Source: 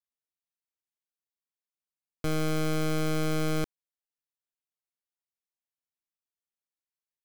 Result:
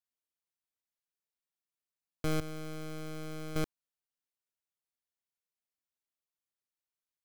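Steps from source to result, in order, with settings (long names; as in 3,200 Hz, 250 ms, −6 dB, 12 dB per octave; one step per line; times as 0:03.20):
0:02.40–0:03.56: downward expander −21 dBFS
level −2.5 dB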